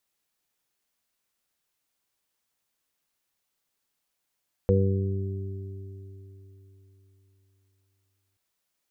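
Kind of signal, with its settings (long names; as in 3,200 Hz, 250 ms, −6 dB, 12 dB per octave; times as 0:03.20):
harmonic partials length 3.68 s, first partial 96.9 Hz, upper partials −4/−16/−7/0.5 dB, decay 3.88 s, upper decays 2.38/3.92/3.34/0.77 s, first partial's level −20 dB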